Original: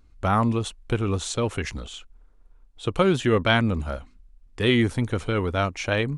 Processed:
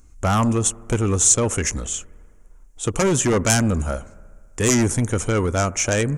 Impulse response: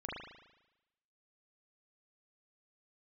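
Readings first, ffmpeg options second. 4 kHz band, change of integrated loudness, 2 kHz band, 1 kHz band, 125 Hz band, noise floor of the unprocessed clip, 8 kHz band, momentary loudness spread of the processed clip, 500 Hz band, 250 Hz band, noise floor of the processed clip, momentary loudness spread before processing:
0.0 dB, +4.5 dB, +0.5 dB, +1.5 dB, +4.0 dB, -54 dBFS, +20.0 dB, 12 LU, +2.5 dB, +3.0 dB, -48 dBFS, 13 LU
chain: -filter_complex "[0:a]aeval=exprs='0.562*sin(PI/2*3.55*val(0)/0.562)':c=same,highshelf=f=5.3k:t=q:w=3:g=9,asplit=2[a][b];[1:a]atrim=start_sample=2205,asetrate=25578,aresample=44100[c];[b][c]afir=irnorm=-1:irlink=0,volume=-24dB[d];[a][d]amix=inputs=2:normalize=0,volume=-9.5dB"

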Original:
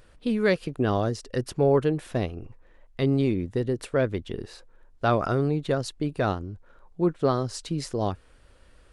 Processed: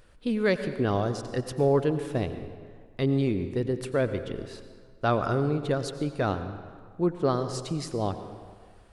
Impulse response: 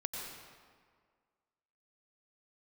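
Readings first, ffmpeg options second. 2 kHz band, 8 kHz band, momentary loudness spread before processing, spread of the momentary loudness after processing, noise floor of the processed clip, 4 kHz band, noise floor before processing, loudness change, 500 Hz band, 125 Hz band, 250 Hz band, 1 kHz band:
-1.5 dB, -1.5 dB, 12 LU, 17 LU, -53 dBFS, -1.5 dB, -56 dBFS, -1.5 dB, -1.5 dB, -1.5 dB, -1.5 dB, -1.5 dB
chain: -filter_complex "[0:a]asplit=2[a][b];[1:a]atrim=start_sample=2205[c];[b][c]afir=irnorm=-1:irlink=0,volume=-5.5dB[d];[a][d]amix=inputs=2:normalize=0,volume=-5dB"

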